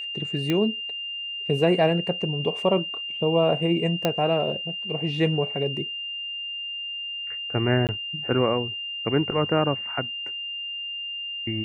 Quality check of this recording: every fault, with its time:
tone 2800 Hz -30 dBFS
0.5 pop -12 dBFS
4.05 pop -8 dBFS
7.87–7.89 gap 18 ms

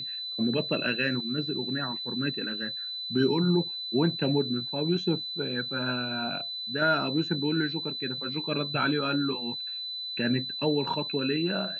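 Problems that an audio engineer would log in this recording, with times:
tone 4000 Hz -33 dBFS

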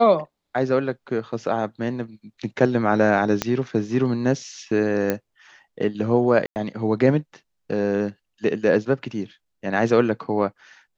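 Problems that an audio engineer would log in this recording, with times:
3.42 pop -6 dBFS
5.1 pop -8 dBFS
6.46–6.56 gap 99 ms

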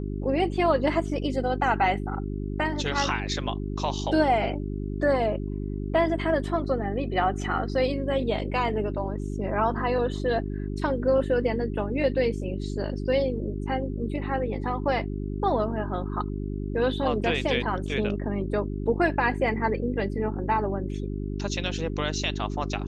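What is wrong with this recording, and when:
hum 50 Hz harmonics 8 -31 dBFS

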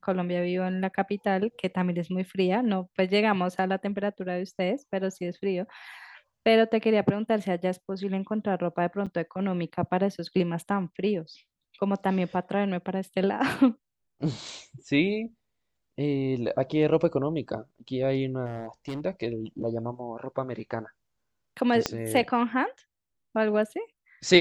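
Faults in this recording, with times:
9.06–9.07 gap 6.4 ms
18.46–19.01 clipped -30 dBFS
21.86 pop -9 dBFS

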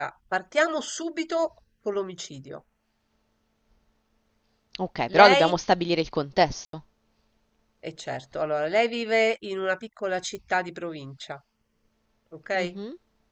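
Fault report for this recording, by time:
6.65–6.73 gap 83 ms
10.35 pop -22 dBFS

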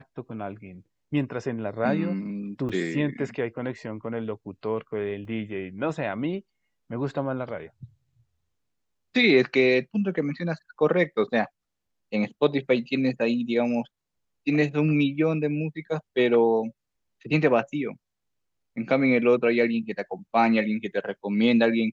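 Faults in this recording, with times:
2.69–2.7 gap 6.2 ms
5.25 gap 2.1 ms

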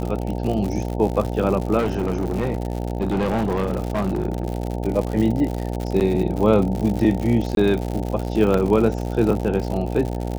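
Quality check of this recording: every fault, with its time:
buzz 60 Hz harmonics 15 -26 dBFS
crackle 110/s -25 dBFS
1.78–4.45 clipped -17.5 dBFS
6–6.01 gap 8.8 ms
7.55–7.57 gap 22 ms
8.54 gap 2.8 ms

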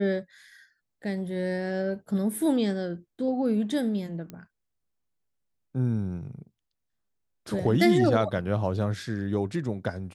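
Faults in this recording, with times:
4.3 pop -25 dBFS

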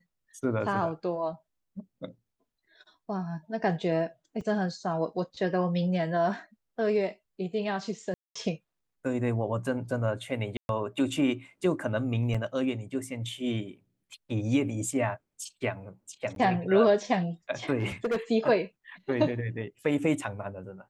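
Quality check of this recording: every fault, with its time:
4.41 gap 4.7 ms
8.14–8.36 gap 0.215 s
10.57–10.69 gap 0.121 s
12.34–12.35 gap 5.4 ms
16.35–16.36 gap 12 ms
17.79–18.17 clipped -24 dBFS

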